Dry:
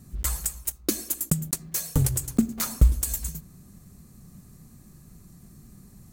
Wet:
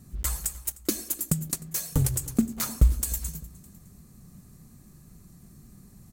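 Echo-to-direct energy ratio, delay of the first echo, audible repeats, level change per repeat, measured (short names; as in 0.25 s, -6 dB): -20.5 dB, 0.305 s, 2, -6.5 dB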